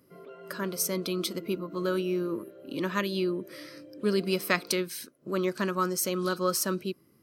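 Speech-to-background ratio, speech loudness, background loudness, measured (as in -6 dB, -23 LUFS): 17.5 dB, -30.0 LUFS, -47.5 LUFS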